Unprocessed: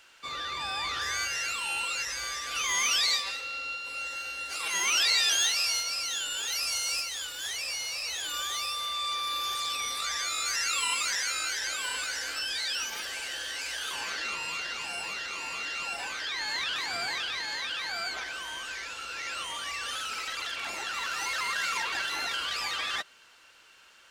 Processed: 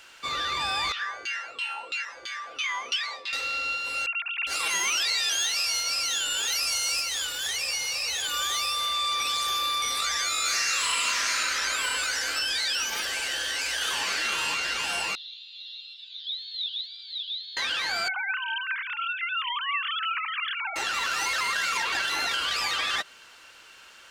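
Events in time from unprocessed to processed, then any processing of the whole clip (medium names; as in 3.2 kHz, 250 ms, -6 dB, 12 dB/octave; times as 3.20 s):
0.92–3.33 s: LFO band-pass saw down 3 Hz 350–3500 Hz
4.06–4.47 s: formants replaced by sine waves
7.38–8.42 s: comb of notches 330 Hz
9.20–9.82 s: reverse
10.40–11.39 s: reverb throw, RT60 2.5 s, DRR -5 dB
13.30–14.03 s: echo throw 510 ms, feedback 60%, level -3.5 dB
15.15–17.57 s: Butterworth band-pass 3.7 kHz, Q 6.1
18.08–20.76 s: formants replaced by sine waves
whole clip: compression, threshold -30 dBFS; trim +6.5 dB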